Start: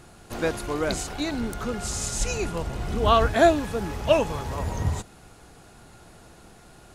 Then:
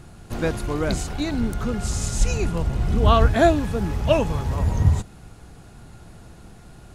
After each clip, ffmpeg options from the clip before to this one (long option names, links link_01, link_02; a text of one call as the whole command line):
ffmpeg -i in.wav -af "bass=frequency=250:gain=9,treble=frequency=4000:gain=-1" out.wav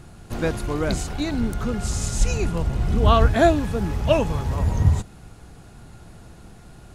ffmpeg -i in.wav -af anull out.wav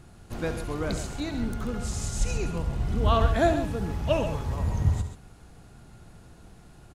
ffmpeg -i in.wav -af "aecho=1:1:69.97|134.1:0.282|0.316,volume=-6.5dB" out.wav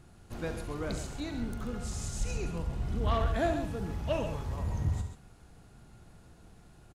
ffmpeg -i in.wav -filter_complex "[0:a]asoftclip=type=tanh:threshold=-15dB,asplit=2[link_01][link_02];[link_02]adelay=42,volume=-13dB[link_03];[link_01][link_03]amix=inputs=2:normalize=0,volume=-5.5dB" out.wav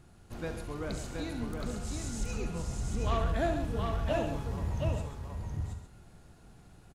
ffmpeg -i in.wav -af "aecho=1:1:721:0.631,volume=-1.5dB" out.wav